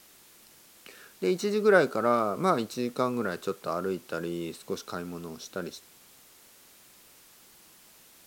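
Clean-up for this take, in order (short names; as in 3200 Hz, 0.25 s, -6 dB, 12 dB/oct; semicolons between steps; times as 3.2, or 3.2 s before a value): noise print and reduce 18 dB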